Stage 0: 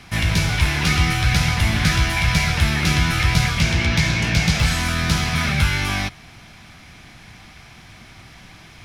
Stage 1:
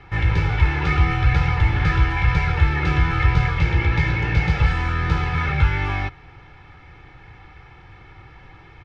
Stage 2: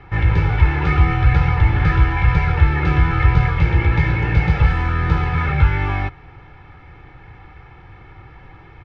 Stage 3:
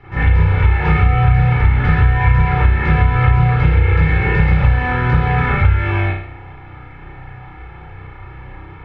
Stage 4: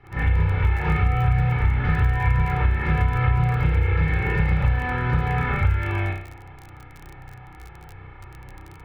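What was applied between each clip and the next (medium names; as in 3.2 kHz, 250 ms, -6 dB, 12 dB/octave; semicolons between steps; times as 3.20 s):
low-pass 1.8 kHz 12 dB/octave; comb 2.3 ms, depth 81%; trim -1.5 dB
treble shelf 3.4 kHz -12 dB; trim +3.5 dB
reverberation RT60 0.60 s, pre-delay 32 ms, DRR -9.5 dB; compression 4:1, threshold -5 dBFS, peak gain reduction 8 dB; trim -4 dB
crackle 31 per s -24 dBFS; trim -7.5 dB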